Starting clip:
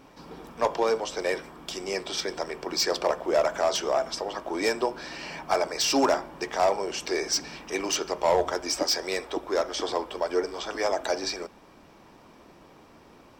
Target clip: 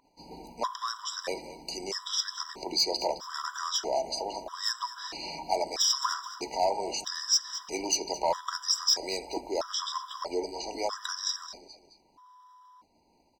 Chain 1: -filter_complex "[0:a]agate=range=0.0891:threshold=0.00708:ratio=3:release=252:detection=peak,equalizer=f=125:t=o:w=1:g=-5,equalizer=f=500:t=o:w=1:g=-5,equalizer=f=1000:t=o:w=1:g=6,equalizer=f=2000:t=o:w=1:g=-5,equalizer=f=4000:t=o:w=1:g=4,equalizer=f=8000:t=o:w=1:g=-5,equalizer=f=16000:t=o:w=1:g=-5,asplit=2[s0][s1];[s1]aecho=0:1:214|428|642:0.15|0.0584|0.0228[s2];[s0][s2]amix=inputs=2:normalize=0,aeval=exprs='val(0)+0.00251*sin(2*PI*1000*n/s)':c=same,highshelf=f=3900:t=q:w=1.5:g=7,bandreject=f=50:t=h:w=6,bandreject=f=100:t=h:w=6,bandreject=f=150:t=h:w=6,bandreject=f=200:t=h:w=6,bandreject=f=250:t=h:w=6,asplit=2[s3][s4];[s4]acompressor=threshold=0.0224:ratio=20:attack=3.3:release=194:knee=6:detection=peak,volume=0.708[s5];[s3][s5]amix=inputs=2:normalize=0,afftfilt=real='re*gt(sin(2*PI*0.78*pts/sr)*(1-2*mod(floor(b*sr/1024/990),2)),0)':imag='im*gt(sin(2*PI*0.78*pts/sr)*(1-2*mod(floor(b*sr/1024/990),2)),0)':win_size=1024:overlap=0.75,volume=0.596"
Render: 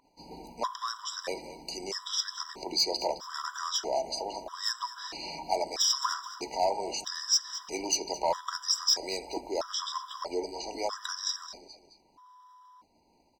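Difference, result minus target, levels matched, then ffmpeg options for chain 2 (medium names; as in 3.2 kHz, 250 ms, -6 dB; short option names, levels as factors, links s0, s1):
compression: peak gain reduction +5.5 dB
-filter_complex "[0:a]agate=range=0.0891:threshold=0.00708:ratio=3:release=252:detection=peak,equalizer=f=125:t=o:w=1:g=-5,equalizer=f=500:t=o:w=1:g=-5,equalizer=f=1000:t=o:w=1:g=6,equalizer=f=2000:t=o:w=1:g=-5,equalizer=f=4000:t=o:w=1:g=4,equalizer=f=8000:t=o:w=1:g=-5,equalizer=f=16000:t=o:w=1:g=-5,asplit=2[s0][s1];[s1]aecho=0:1:214|428|642:0.15|0.0584|0.0228[s2];[s0][s2]amix=inputs=2:normalize=0,aeval=exprs='val(0)+0.00251*sin(2*PI*1000*n/s)':c=same,highshelf=f=3900:t=q:w=1.5:g=7,bandreject=f=50:t=h:w=6,bandreject=f=100:t=h:w=6,bandreject=f=150:t=h:w=6,bandreject=f=200:t=h:w=6,bandreject=f=250:t=h:w=6,asplit=2[s3][s4];[s4]acompressor=threshold=0.0447:ratio=20:attack=3.3:release=194:knee=6:detection=peak,volume=0.708[s5];[s3][s5]amix=inputs=2:normalize=0,afftfilt=real='re*gt(sin(2*PI*0.78*pts/sr)*(1-2*mod(floor(b*sr/1024/990),2)),0)':imag='im*gt(sin(2*PI*0.78*pts/sr)*(1-2*mod(floor(b*sr/1024/990),2)),0)':win_size=1024:overlap=0.75,volume=0.596"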